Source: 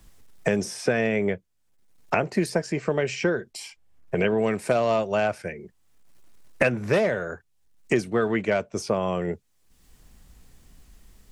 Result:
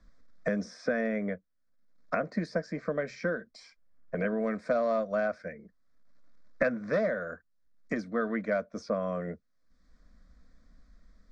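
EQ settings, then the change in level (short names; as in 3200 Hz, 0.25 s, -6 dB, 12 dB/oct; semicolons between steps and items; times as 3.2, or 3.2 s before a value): LPF 4800 Hz 24 dB/oct; fixed phaser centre 570 Hz, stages 8; -4.0 dB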